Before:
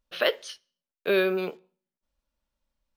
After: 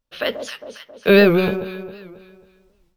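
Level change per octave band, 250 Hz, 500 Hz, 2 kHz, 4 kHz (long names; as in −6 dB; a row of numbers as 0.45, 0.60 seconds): +14.5, +9.5, +8.5, +5.5 decibels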